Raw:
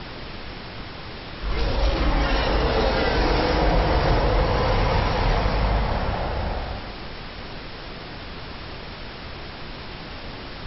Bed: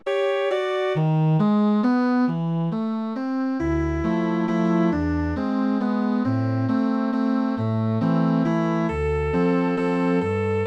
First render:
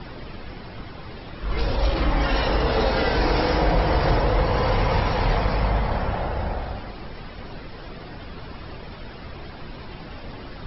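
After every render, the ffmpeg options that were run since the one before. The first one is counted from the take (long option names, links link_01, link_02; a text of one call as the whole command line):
ffmpeg -i in.wav -af "afftdn=noise_reduction=10:noise_floor=-37" out.wav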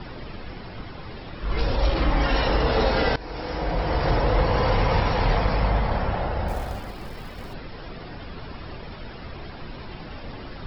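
ffmpeg -i in.wav -filter_complex "[0:a]asettb=1/sr,asplit=3[link_01][link_02][link_03];[link_01]atrim=end=6.484[link_04];[link_02]atrim=start=6.48:end=7.54,asetpts=PTS-STARTPTS,afade=type=in:duration=0.004:curve=qsin,afade=type=out:start_time=1.056:duration=0.004:curve=qsin,acrusher=bits=5:mode=log:mix=0:aa=0.000001[link_05];[link_03]atrim=start=7.536[link_06];[link_04][link_05]acrossfade=duration=0.004:curve1=hsin:curve2=qsin[link_07];[link_07][link_06]acrossfade=duration=0.004:curve1=qsin:curve2=hsin,asplit=2[link_08][link_09];[link_08]atrim=end=3.16,asetpts=PTS-STARTPTS,afade=type=out:start_time=3.156:duration=0.004:curve=hsin:silence=0.1[link_10];[link_09]atrim=start=3.16,asetpts=PTS-STARTPTS,afade=type=in:duration=1.2:silence=0.1[link_11];[link_10][link_11]concat=n=2:v=0:a=1" out.wav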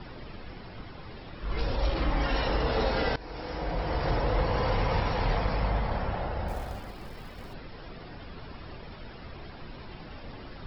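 ffmpeg -i in.wav -af "volume=-6dB" out.wav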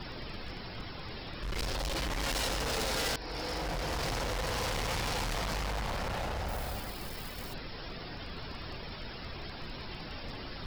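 ffmpeg -i in.wav -af "volume=33dB,asoftclip=hard,volume=-33dB,crystalizer=i=3.5:c=0" out.wav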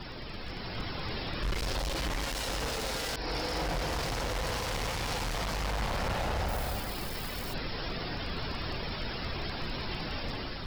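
ffmpeg -i in.wav -af "dynaudnorm=framelen=260:gausssize=5:maxgain=6.5dB,alimiter=level_in=1dB:limit=-24dB:level=0:latency=1:release=29,volume=-1dB" out.wav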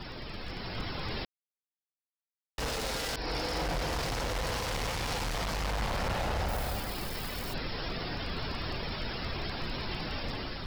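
ffmpeg -i in.wav -filter_complex "[0:a]asplit=3[link_01][link_02][link_03];[link_01]atrim=end=1.25,asetpts=PTS-STARTPTS,afade=type=out:start_time=1.246:duration=0.004:curve=hsin[link_04];[link_02]atrim=start=1.25:end=2.58,asetpts=PTS-STARTPTS,volume=0[link_05];[link_03]atrim=start=2.58,asetpts=PTS-STARTPTS,afade=type=in:duration=0.004:curve=hsin[link_06];[link_04][link_05][link_06]concat=n=3:v=0:a=1" out.wav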